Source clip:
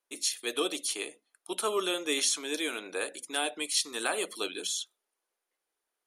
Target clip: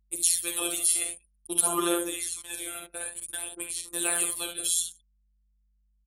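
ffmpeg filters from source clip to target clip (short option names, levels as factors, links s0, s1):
-filter_complex "[0:a]acrossover=split=9900[s0][s1];[s1]acompressor=threshold=0.00501:ratio=4:attack=1:release=60[s2];[s0][s2]amix=inputs=2:normalize=0,agate=range=0.398:threshold=0.00794:ratio=16:detection=peak,aexciter=amount=9:drive=2.8:freq=8100,asettb=1/sr,asplit=3[s3][s4][s5];[s3]atrim=end=2.024[s6];[s4]atrim=start=2.02:end=3.94,asetpts=PTS-STARTPTS,afade=t=in:d=0.004:c=qsin,afade=t=out:st=1.916:d=0.004:c=qsin,acompressor=threshold=0.0282:ratio=8[s7];[s5]atrim=start=3.936[s8];[s6][s7]acrossfade=d=0.004:c1=hsin:c2=qsin[s9];[s9][s8]acrossfade=d=0.004:c1=qsin:c2=hsin,aecho=1:1:48|60|72|187:0.422|0.299|0.335|0.112,afftfilt=real='hypot(re,im)*cos(PI*b)':imag='0':win_size=1024:overlap=0.75,aphaser=in_gain=1:out_gain=1:delay=1.5:decay=0.49:speed=0.53:type=sinusoidal,aeval=exprs='val(0)+0.000794*(sin(2*PI*50*n/s)+sin(2*PI*2*50*n/s)/2+sin(2*PI*3*50*n/s)/3+sin(2*PI*4*50*n/s)/4+sin(2*PI*5*50*n/s)/5)':c=same,anlmdn=0.0631,volume=1.12"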